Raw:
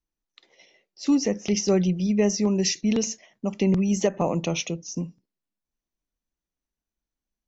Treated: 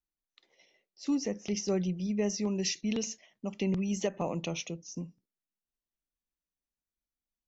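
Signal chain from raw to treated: 2.26–4.50 s: peaking EQ 3.1 kHz +5 dB 1.1 oct; trim -9 dB

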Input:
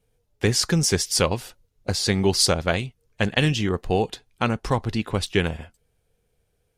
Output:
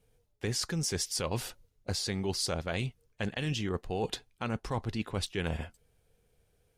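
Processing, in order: peak limiter -11 dBFS, peak gain reduction 6 dB; reverse; compression 6:1, threshold -30 dBFS, peak gain reduction 13 dB; reverse

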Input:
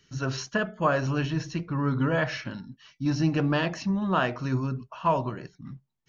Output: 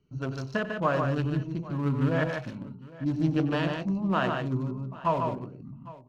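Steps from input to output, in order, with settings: local Wiener filter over 25 samples; on a send: multi-tap echo 94/148/170/806 ms -13.5/-5/-20/-19.5 dB; on the sum: trim -2 dB

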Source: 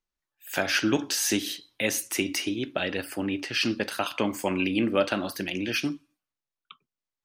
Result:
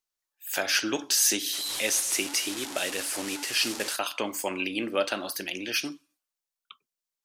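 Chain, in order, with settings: 1.53–3.96 s: one-bit delta coder 64 kbps, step -28 dBFS; tone controls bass -13 dB, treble +8 dB; trim -2 dB

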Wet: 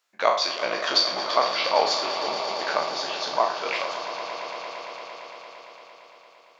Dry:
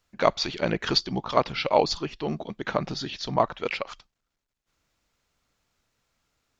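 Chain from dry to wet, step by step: spectral sustain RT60 0.50 s; high-pass 600 Hz 12 dB/octave; on a send: echo with a slow build-up 114 ms, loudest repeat 5, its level -13.5 dB

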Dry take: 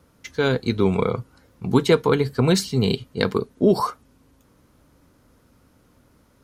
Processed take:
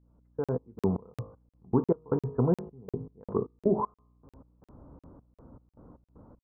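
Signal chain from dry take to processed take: fade-in on the opening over 0.84 s; steep low-pass 1.1 kHz 36 dB/octave; de-hum 52.52 Hz, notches 24; compression 1.5:1, threshold -53 dBFS, peak gain reduction 14.5 dB; trance gate "x.x.x.x..x.xx" 78 bpm -24 dB; hum 60 Hz, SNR 32 dB; crackling interface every 0.35 s, samples 2048, zero, from 0.44 s; trim +7 dB

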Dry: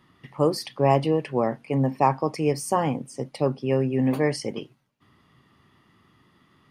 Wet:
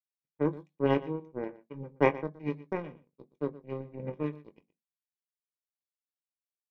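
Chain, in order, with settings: steep low-pass 5.7 kHz; formant shift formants -4 st; power-law waveshaper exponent 3; doubling 21 ms -12 dB; delay 120 ms -18 dB; reverberation RT60 0.25 s, pre-delay 3 ms, DRR 18.5 dB; trim -6 dB

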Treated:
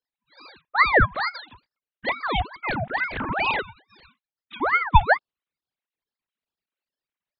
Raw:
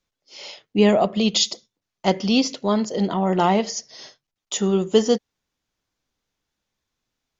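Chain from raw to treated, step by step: formants replaced by sine waves; ring modulator with a swept carrier 1.1 kHz, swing 65%, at 2.3 Hz

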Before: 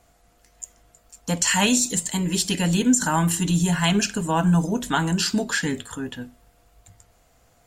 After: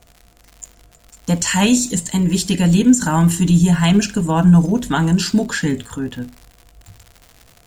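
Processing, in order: bass shelf 390 Hz +9 dB; crackle 130 per s -32 dBFS; trim +1 dB

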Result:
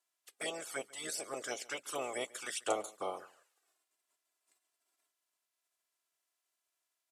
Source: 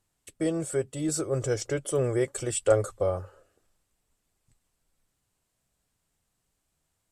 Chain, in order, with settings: spectral peaks clipped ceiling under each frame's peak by 22 dB; high-pass 520 Hz 12 dB/octave; touch-sensitive flanger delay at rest 3 ms, full sweep at -26 dBFS; delay 141 ms -22 dB; trim -6 dB

